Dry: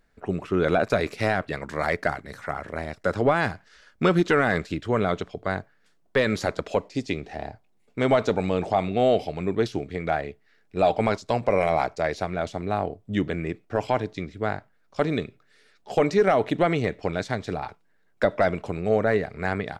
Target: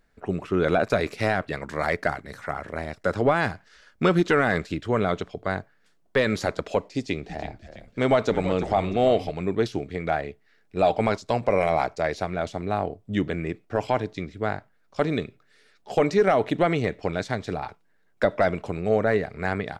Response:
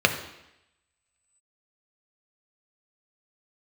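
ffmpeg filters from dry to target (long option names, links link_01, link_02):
-filter_complex "[0:a]asettb=1/sr,asplit=3[link_01][link_02][link_03];[link_01]atrim=end=6.944[link_04];[link_02]atrim=start=6.94:end=9.31,asetpts=PTS-STARTPTS,afade=type=in:duration=0.004:curve=qsin,afade=type=out:start_time=2.366:duration=0.004:curve=qsin,asplit=6[link_05][link_06][link_07][link_08][link_09][link_10];[link_06]adelay=331,afreqshift=-96,volume=-12dB[link_11];[link_07]adelay=662,afreqshift=-192,volume=-18.6dB[link_12];[link_08]adelay=993,afreqshift=-288,volume=-25.1dB[link_13];[link_09]adelay=1324,afreqshift=-384,volume=-31.7dB[link_14];[link_10]adelay=1655,afreqshift=-480,volume=-38.2dB[link_15];[link_05][link_11][link_12][link_13][link_14][link_15]amix=inputs=6:normalize=0,atrim=end_sample=104517[link_16];[link_03]atrim=start=9.306[link_17];[link_04][link_16]acrossfade=duration=0.004:curve1=hsin:curve2=qsin[link_18];[link_18][link_17]acrossfade=duration=0.004:curve1=qsin:curve2=hsin"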